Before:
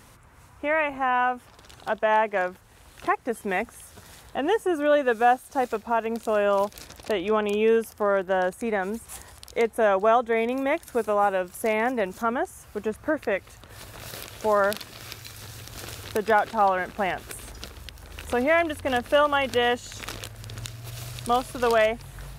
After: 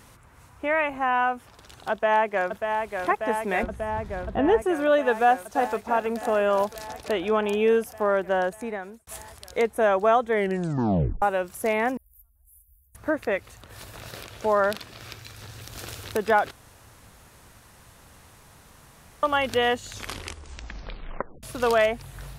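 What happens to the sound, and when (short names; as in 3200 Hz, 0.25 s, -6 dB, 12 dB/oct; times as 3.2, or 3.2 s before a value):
1.91–3.07 echo throw 0.59 s, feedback 80%, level -5.5 dB
3.63–4.62 RIAA curve playback
5.22–5.84 echo throw 0.33 s, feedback 65%, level -11.5 dB
8.39–9.07 fade out
10.31 tape stop 0.91 s
11.97–12.95 inverse Chebyshev band-stop 180–4800 Hz, stop band 60 dB
14–15.61 high shelf 6200 Hz -8 dB
16.51–19.23 room tone
19.92 tape stop 1.51 s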